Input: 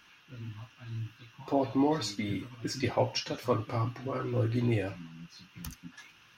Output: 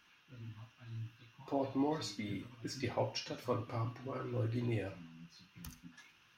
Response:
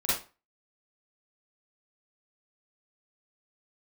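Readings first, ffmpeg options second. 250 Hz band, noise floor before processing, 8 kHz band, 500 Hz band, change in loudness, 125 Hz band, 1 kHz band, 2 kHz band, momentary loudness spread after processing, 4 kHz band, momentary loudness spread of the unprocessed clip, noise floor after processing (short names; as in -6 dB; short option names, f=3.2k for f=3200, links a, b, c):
-7.5 dB, -60 dBFS, -7.5 dB, -7.5 dB, -7.5 dB, -7.5 dB, -7.5 dB, -7.5 dB, 18 LU, -7.5 dB, 19 LU, -67 dBFS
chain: -filter_complex "[0:a]asplit=2[a][b];[1:a]atrim=start_sample=2205[c];[b][c]afir=irnorm=-1:irlink=0,volume=-20.5dB[d];[a][d]amix=inputs=2:normalize=0,volume=-8.5dB"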